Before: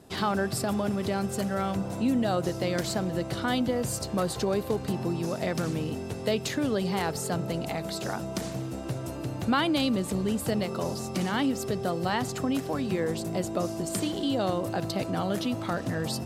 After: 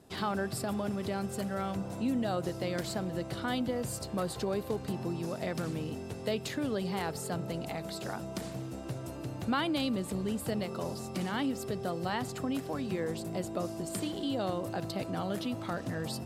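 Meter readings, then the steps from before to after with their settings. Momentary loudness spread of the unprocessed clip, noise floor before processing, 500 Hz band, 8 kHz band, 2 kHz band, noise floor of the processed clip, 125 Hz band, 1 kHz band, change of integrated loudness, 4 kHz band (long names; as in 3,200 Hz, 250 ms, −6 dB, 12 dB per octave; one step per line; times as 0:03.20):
5 LU, −36 dBFS, −5.5 dB, −6.5 dB, −5.5 dB, −42 dBFS, −5.5 dB, −5.5 dB, −5.5 dB, −6.0 dB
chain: dynamic equaliser 6,100 Hz, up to −4 dB, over −52 dBFS, Q 3.3
level −5.5 dB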